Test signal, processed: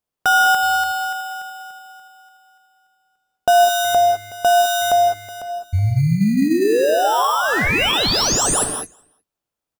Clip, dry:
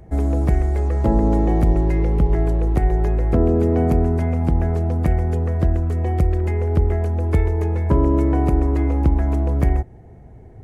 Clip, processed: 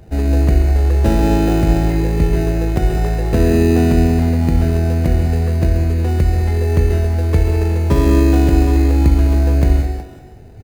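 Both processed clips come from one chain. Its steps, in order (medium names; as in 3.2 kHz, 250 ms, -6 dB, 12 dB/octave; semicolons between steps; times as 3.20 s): hum notches 60/120/180/240/300/360 Hz; speakerphone echo 370 ms, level -14 dB; in parallel at -3 dB: sample-rate reducer 2.2 kHz, jitter 0%; on the sum: gated-style reverb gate 230 ms rising, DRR 5 dB; trim -1.5 dB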